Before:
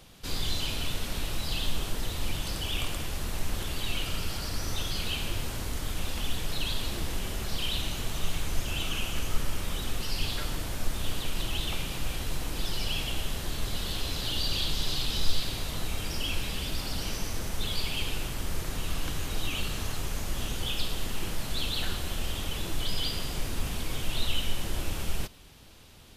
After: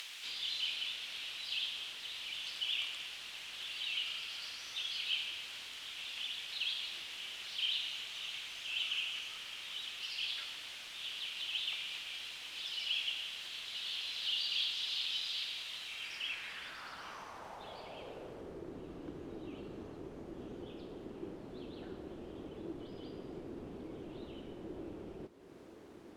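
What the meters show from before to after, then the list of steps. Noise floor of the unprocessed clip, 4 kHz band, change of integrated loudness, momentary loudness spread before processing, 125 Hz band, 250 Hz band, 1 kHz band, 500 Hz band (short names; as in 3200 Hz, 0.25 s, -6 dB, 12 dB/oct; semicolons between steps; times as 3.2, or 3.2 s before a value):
-36 dBFS, -3.5 dB, -6.5 dB, 4 LU, -22.5 dB, -9.5 dB, -12.5 dB, -8.5 dB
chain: added noise white -46 dBFS; upward compressor, threshold -28 dBFS; band-pass sweep 3000 Hz -> 350 Hz, 15.86–18.7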